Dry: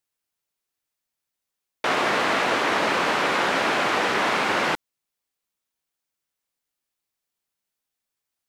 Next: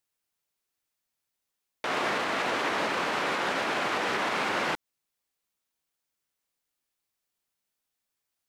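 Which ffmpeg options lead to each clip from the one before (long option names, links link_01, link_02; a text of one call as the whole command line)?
ffmpeg -i in.wav -af "alimiter=limit=-19.5dB:level=0:latency=1:release=144" out.wav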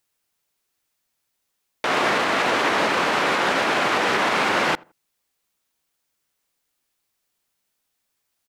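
ffmpeg -i in.wav -filter_complex "[0:a]asplit=2[link_01][link_02];[link_02]adelay=83,lowpass=frequency=1400:poles=1,volume=-24dB,asplit=2[link_03][link_04];[link_04]adelay=83,lowpass=frequency=1400:poles=1,volume=0.3[link_05];[link_01][link_03][link_05]amix=inputs=3:normalize=0,volume=8dB" out.wav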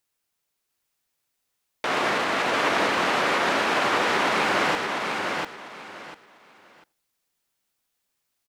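ffmpeg -i in.wav -af "aecho=1:1:696|1392|2088:0.631|0.145|0.0334,volume=-3.5dB" out.wav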